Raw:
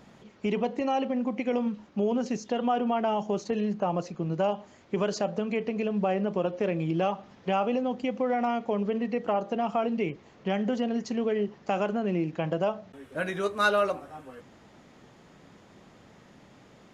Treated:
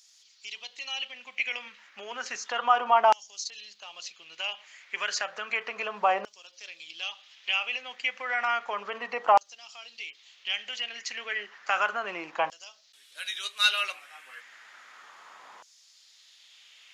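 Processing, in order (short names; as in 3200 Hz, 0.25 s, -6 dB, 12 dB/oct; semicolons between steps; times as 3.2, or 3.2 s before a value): LFO high-pass saw down 0.32 Hz 910–5700 Hz; gain +6 dB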